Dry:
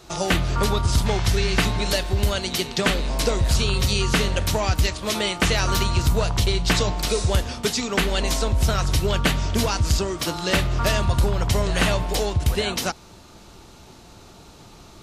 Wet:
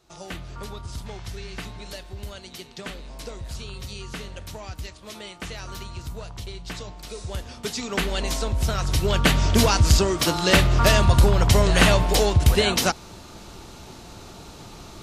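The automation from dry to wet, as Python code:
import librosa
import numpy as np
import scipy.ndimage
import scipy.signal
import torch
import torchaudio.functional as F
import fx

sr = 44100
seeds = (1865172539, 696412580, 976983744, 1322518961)

y = fx.gain(x, sr, db=fx.line((7.05, -15.0), (7.93, -3.5), (8.76, -3.5), (9.47, 4.0)))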